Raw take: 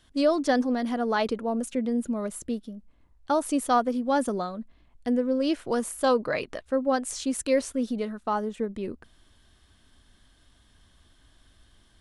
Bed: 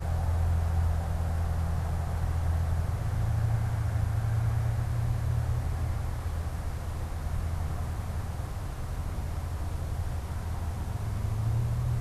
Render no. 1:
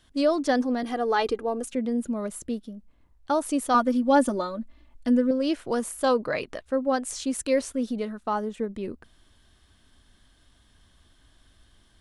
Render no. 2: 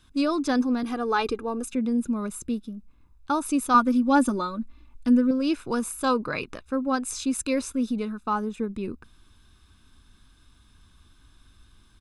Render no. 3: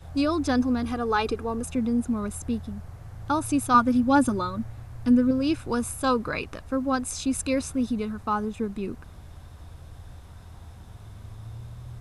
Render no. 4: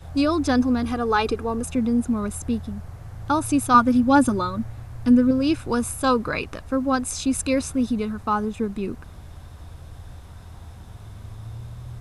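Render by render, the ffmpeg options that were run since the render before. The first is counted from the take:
ffmpeg -i in.wav -filter_complex "[0:a]asettb=1/sr,asplit=3[link_01][link_02][link_03];[link_01]atrim=end=0.834[link_04];[link_02]atrim=start=0.83:end=1.65,asetpts=PTS-STARTPTS,afade=type=in:duration=0.004:curve=qsin,afade=type=out:start_time=0.816:duration=0.004:curve=qsin,aecho=1:1:2.5:0.64,atrim=end_sample=36162[link_05];[link_03]atrim=start=1.646[link_06];[link_04][link_05]acrossfade=duration=0.004:curve1=hsin:curve2=qsin[link_07];[link_07][link_06]acrossfade=duration=0.004:curve1=qsin:curve2=hsin,asettb=1/sr,asplit=3[link_08][link_09][link_10];[link_08]atrim=end=3.744[link_11];[link_09]atrim=start=3.74:end=5.31,asetpts=PTS-STARTPTS,afade=type=in:duration=0.004:curve=qsin,afade=type=out:start_time=1.566:duration=0.004:curve=qsin,aecho=1:1:3.4:0.97,atrim=end_sample=69237[link_12];[link_10]atrim=start=5.306[link_13];[link_11][link_12]acrossfade=duration=0.004:curve1=hsin:curve2=qsin[link_14];[link_14][link_13]acrossfade=duration=0.004:curve1=qsin:curve2=hsin" out.wav
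ffmpeg -i in.wav -af "aecho=1:1:0.8:0.61" out.wav
ffmpeg -i in.wav -i bed.wav -filter_complex "[1:a]volume=-11.5dB[link_01];[0:a][link_01]amix=inputs=2:normalize=0" out.wav
ffmpeg -i in.wav -af "volume=3.5dB" out.wav

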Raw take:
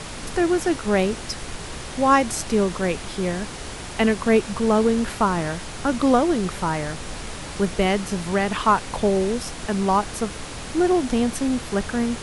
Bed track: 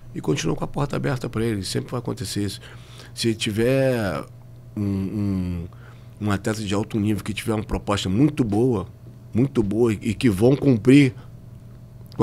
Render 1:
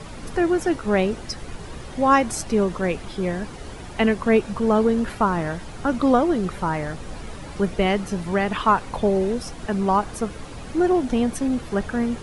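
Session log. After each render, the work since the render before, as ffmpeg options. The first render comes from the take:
ffmpeg -i in.wav -af "afftdn=noise_reduction=10:noise_floor=-35" out.wav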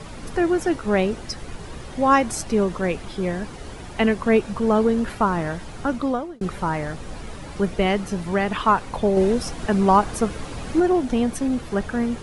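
ffmpeg -i in.wav -filter_complex "[0:a]asplit=4[link_01][link_02][link_03][link_04];[link_01]atrim=end=6.41,asetpts=PTS-STARTPTS,afade=type=out:start_time=5.81:duration=0.6[link_05];[link_02]atrim=start=6.41:end=9.172,asetpts=PTS-STARTPTS,afade=type=in:duration=0.004:curve=hsin[link_06];[link_03]atrim=start=9.168:end=10.802,asetpts=PTS-STARTPTS,volume=4dB[link_07];[link_04]atrim=start=10.798[link_08];[link_05][link_06]concat=n=2:v=0:a=1[link_09];[link_09][link_07]acrossfade=duration=0.004:curve1=hsin:curve2=hsin[link_10];[link_10][link_08]acrossfade=duration=0.004:curve1=hsin:curve2=hsin" out.wav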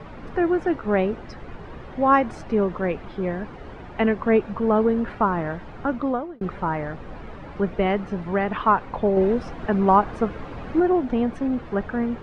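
ffmpeg -i in.wav -af "lowpass=2000,lowshelf=frequency=180:gain=-4" out.wav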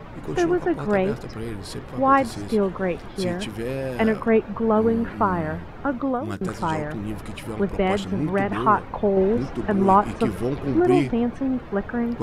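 ffmpeg -i in.wav -i bed.wav -filter_complex "[1:a]volume=-9dB[link_01];[0:a][link_01]amix=inputs=2:normalize=0" out.wav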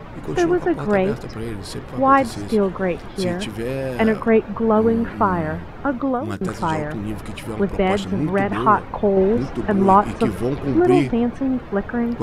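ffmpeg -i in.wav -af "volume=3dB" out.wav

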